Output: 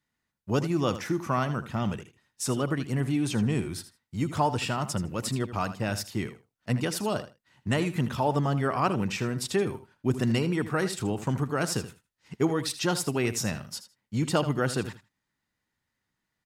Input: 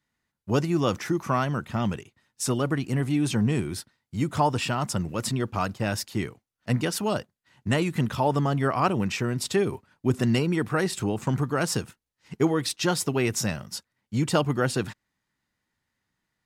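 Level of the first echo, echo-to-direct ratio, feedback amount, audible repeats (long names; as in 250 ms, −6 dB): −13.0 dB, −13.0 dB, 16%, 2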